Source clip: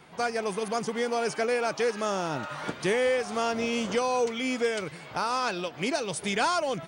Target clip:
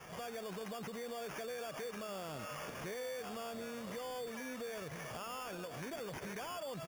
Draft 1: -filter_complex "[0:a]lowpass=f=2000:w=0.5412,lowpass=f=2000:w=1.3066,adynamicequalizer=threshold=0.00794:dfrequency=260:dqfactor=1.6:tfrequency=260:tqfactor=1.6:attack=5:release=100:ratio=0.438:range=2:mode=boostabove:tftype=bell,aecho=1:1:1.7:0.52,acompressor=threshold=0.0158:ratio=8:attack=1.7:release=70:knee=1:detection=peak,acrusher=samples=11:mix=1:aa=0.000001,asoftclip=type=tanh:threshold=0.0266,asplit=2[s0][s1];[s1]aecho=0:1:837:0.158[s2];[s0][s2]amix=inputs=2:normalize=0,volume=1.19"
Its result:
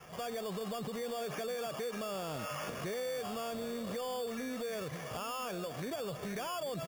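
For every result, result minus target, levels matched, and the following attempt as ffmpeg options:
echo 570 ms early; compression: peak gain reduction -6 dB; 2 kHz band -3.0 dB
-filter_complex "[0:a]lowpass=f=2000:w=0.5412,lowpass=f=2000:w=1.3066,adynamicequalizer=threshold=0.00794:dfrequency=260:dqfactor=1.6:tfrequency=260:tqfactor=1.6:attack=5:release=100:ratio=0.438:range=2:mode=boostabove:tftype=bell,aecho=1:1:1.7:0.52,acompressor=threshold=0.0158:ratio=8:attack=1.7:release=70:knee=1:detection=peak,acrusher=samples=11:mix=1:aa=0.000001,asoftclip=type=tanh:threshold=0.0266,asplit=2[s0][s1];[s1]aecho=0:1:1407:0.158[s2];[s0][s2]amix=inputs=2:normalize=0,volume=1.19"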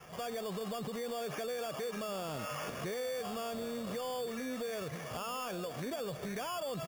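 compression: peak gain reduction -6 dB; 2 kHz band -3.0 dB
-filter_complex "[0:a]lowpass=f=2000:w=0.5412,lowpass=f=2000:w=1.3066,adynamicequalizer=threshold=0.00794:dfrequency=260:dqfactor=1.6:tfrequency=260:tqfactor=1.6:attack=5:release=100:ratio=0.438:range=2:mode=boostabove:tftype=bell,aecho=1:1:1.7:0.52,acompressor=threshold=0.0075:ratio=8:attack=1.7:release=70:knee=1:detection=peak,acrusher=samples=11:mix=1:aa=0.000001,asoftclip=type=tanh:threshold=0.0266,asplit=2[s0][s1];[s1]aecho=0:1:1407:0.158[s2];[s0][s2]amix=inputs=2:normalize=0,volume=1.19"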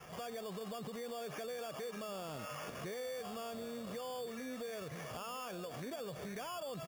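2 kHz band -3.0 dB
-filter_complex "[0:a]adynamicequalizer=threshold=0.00794:dfrequency=260:dqfactor=1.6:tfrequency=260:tqfactor=1.6:attack=5:release=100:ratio=0.438:range=2:mode=boostabove:tftype=bell,aecho=1:1:1.7:0.52,acompressor=threshold=0.0075:ratio=8:attack=1.7:release=70:knee=1:detection=peak,acrusher=samples=11:mix=1:aa=0.000001,asoftclip=type=tanh:threshold=0.0266,asplit=2[s0][s1];[s1]aecho=0:1:1407:0.158[s2];[s0][s2]amix=inputs=2:normalize=0,volume=1.19"

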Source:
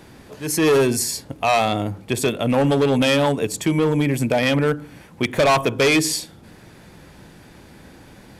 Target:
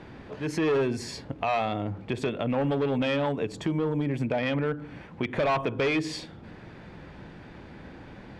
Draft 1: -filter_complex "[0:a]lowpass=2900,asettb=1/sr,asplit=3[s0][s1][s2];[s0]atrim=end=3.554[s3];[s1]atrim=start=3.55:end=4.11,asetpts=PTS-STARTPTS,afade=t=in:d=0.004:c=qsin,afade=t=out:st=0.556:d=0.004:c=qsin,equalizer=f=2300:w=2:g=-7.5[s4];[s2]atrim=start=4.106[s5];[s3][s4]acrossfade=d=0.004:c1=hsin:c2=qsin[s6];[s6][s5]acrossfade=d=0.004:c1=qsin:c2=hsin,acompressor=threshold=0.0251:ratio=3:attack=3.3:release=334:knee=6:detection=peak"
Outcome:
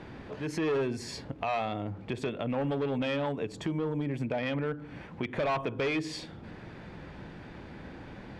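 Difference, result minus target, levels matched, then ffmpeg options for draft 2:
compression: peak gain reduction +4.5 dB
-filter_complex "[0:a]lowpass=2900,asettb=1/sr,asplit=3[s0][s1][s2];[s0]atrim=end=3.554[s3];[s1]atrim=start=3.55:end=4.11,asetpts=PTS-STARTPTS,afade=t=in:d=0.004:c=qsin,afade=t=out:st=0.556:d=0.004:c=qsin,equalizer=f=2300:w=2:g=-7.5[s4];[s2]atrim=start=4.106[s5];[s3][s4]acrossfade=d=0.004:c1=hsin:c2=qsin[s6];[s6][s5]acrossfade=d=0.004:c1=qsin:c2=hsin,acompressor=threshold=0.0531:ratio=3:attack=3.3:release=334:knee=6:detection=peak"

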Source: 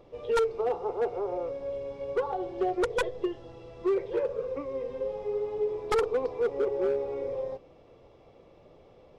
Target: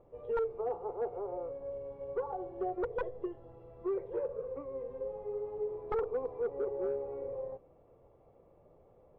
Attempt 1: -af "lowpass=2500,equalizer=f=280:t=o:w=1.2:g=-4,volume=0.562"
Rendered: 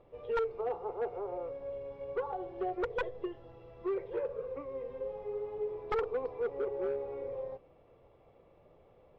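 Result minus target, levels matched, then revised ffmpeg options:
2 kHz band +6.5 dB
-af "lowpass=1100,equalizer=f=280:t=o:w=1.2:g=-4,volume=0.562"

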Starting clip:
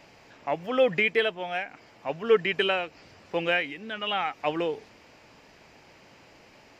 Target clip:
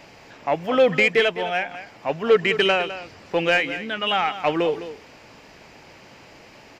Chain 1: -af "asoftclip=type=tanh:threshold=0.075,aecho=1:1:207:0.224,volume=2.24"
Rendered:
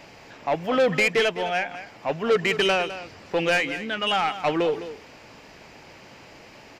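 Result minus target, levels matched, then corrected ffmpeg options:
saturation: distortion +8 dB
-af "asoftclip=type=tanh:threshold=0.168,aecho=1:1:207:0.224,volume=2.24"

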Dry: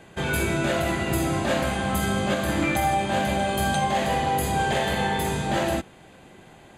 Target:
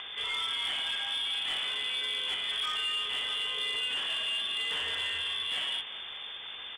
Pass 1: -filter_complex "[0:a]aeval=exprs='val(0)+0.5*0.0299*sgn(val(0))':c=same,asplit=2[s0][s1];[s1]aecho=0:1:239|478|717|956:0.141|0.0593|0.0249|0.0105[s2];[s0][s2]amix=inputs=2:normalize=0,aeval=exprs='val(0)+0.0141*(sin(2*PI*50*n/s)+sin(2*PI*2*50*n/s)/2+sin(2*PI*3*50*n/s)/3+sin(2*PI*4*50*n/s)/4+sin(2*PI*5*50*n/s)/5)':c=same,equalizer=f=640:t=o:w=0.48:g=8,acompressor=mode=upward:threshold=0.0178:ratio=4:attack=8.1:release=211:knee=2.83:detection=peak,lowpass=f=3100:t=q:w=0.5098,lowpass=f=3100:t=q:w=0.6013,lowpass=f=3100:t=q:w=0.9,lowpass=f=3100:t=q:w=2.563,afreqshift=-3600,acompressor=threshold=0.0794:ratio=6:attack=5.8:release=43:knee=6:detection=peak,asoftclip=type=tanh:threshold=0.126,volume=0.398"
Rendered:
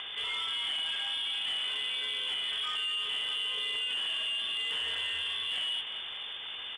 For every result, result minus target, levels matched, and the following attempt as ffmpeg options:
compression: peak gain reduction +7 dB; 500 Hz band -3.0 dB
-filter_complex "[0:a]aeval=exprs='val(0)+0.5*0.0299*sgn(val(0))':c=same,asplit=2[s0][s1];[s1]aecho=0:1:239|478|717|956:0.141|0.0593|0.0249|0.0105[s2];[s0][s2]amix=inputs=2:normalize=0,aeval=exprs='val(0)+0.0141*(sin(2*PI*50*n/s)+sin(2*PI*2*50*n/s)/2+sin(2*PI*3*50*n/s)/3+sin(2*PI*4*50*n/s)/4+sin(2*PI*5*50*n/s)/5)':c=same,equalizer=f=640:t=o:w=0.48:g=8,acompressor=mode=upward:threshold=0.0178:ratio=4:attack=8.1:release=211:knee=2.83:detection=peak,lowpass=f=3100:t=q:w=0.5098,lowpass=f=3100:t=q:w=0.6013,lowpass=f=3100:t=q:w=0.9,lowpass=f=3100:t=q:w=2.563,afreqshift=-3600,asoftclip=type=tanh:threshold=0.126,volume=0.398"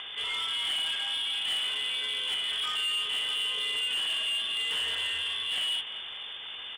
500 Hz band -3.0 dB
-filter_complex "[0:a]aeval=exprs='val(0)+0.5*0.0299*sgn(val(0))':c=same,asplit=2[s0][s1];[s1]aecho=0:1:239|478|717|956:0.141|0.0593|0.0249|0.0105[s2];[s0][s2]amix=inputs=2:normalize=0,aeval=exprs='val(0)+0.0141*(sin(2*PI*50*n/s)+sin(2*PI*2*50*n/s)/2+sin(2*PI*3*50*n/s)/3+sin(2*PI*4*50*n/s)/4+sin(2*PI*5*50*n/s)/5)':c=same,equalizer=f=640:t=o:w=0.48:g=-3,acompressor=mode=upward:threshold=0.0178:ratio=4:attack=8.1:release=211:knee=2.83:detection=peak,lowpass=f=3100:t=q:w=0.5098,lowpass=f=3100:t=q:w=0.6013,lowpass=f=3100:t=q:w=0.9,lowpass=f=3100:t=q:w=2.563,afreqshift=-3600,asoftclip=type=tanh:threshold=0.126,volume=0.398"

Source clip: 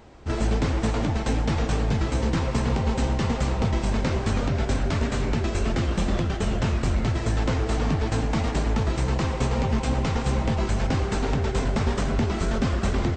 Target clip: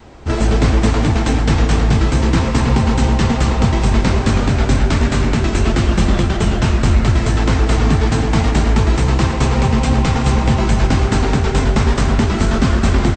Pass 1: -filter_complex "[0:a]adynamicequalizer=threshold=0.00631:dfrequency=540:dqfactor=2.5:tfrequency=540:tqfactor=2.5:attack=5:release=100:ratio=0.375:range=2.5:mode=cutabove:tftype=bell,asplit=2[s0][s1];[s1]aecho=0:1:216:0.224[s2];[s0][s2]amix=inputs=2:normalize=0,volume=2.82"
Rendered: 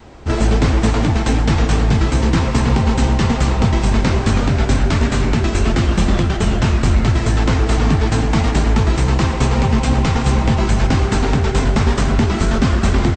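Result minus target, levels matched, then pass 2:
echo-to-direct -7 dB
-filter_complex "[0:a]adynamicequalizer=threshold=0.00631:dfrequency=540:dqfactor=2.5:tfrequency=540:tqfactor=2.5:attack=5:release=100:ratio=0.375:range=2.5:mode=cutabove:tftype=bell,asplit=2[s0][s1];[s1]aecho=0:1:216:0.501[s2];[s0][s2]amix=inputs=2:normalize=0,volume=2.82"

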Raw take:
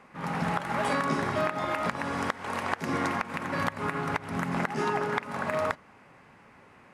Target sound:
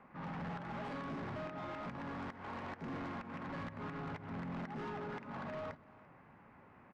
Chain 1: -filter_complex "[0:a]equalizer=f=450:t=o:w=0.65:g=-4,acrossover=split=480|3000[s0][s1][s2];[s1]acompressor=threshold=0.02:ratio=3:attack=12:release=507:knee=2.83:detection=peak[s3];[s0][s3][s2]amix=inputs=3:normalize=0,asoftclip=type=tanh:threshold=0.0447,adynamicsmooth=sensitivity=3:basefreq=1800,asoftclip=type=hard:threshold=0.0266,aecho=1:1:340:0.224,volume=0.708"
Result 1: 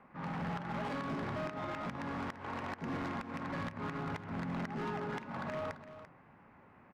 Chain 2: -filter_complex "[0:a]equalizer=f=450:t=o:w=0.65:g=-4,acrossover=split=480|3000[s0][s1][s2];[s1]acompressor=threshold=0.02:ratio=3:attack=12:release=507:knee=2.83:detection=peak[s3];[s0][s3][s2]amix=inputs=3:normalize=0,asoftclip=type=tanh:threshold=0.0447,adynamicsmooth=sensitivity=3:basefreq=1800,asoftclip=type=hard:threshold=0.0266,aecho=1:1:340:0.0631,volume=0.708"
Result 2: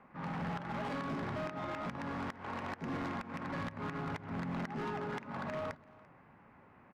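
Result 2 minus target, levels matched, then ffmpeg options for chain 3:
saturation: distortion -7 dB
-filter_complex "[0:a]equalizer=f=450:t=o:w=0.65:g=-4,acrossover=split=480|3000[s0][s1][s2];[s1]acompressor=threshold=0.02:ratio=3:attack=12:release=507:knee=2.83:detection=peak[s3];[s0][s3][s2]amix=inputs=3:normalize=0,asoftclip=type=tanh:threshold=0.0158,adynamicsmooth=sensitivity=3:basefreq=1800,asoftclip=type=hard:threshold=0.0266,aecho=1:1:340:0.0631,volume=0.708"

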